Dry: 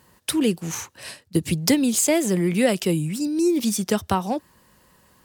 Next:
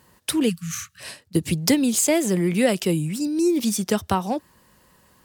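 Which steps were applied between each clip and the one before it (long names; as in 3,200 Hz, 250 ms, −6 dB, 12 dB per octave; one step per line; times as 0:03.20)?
time-frequency box erased 0:00.49–0:01.01, 210–1,100 Hz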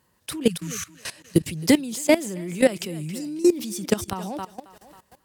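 feedback echo with a high-pass in the loop 272 ms, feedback 38%, high-pass 280 Hz, level −13 dB
output level in coarse steps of 18 dB
level +5 dB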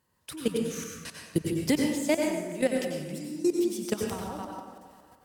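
dense smooth reverb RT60 1.1 s, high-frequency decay 0.55×, pre-delay 80 ms, DRR 0 dB
level −8.5 dB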